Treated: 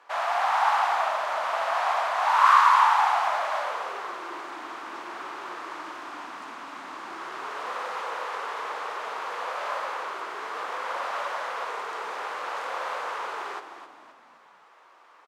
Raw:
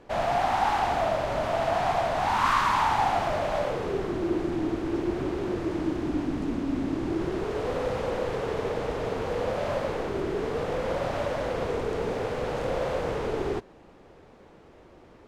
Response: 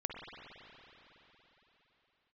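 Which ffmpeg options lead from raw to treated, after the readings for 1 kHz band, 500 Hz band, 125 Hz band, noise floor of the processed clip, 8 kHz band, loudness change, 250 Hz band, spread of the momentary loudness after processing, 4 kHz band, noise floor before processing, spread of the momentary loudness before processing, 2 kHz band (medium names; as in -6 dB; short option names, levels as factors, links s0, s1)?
+4.0 dB, -8.5 dB, under -30 dB, -55 dBFS, +0.5 dB, +1.0 dB, -20.5 dB, 17 LU, +1.5 dB, -53 dBFS, 6 LU, +4.5 dB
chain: -filter_complex "[0:a]highpass=f=1100:t=q:w=2.4,asplit=5[s0][s1][s2][s3][s4];[s1]adelay=261,afreqshift=-53,volume=0.316[s5];[s2]adelay=522,afreqshift=-106,volume=0.13[s6];[s3]adelay=783,afreqshift=-159,volume=0.0531[s7];[s4]adelay=1044,afreqshift=-212,volume=0.0219[s8];[s0][s5][s6][s7][s8]amix=inputs=5:normalize=0"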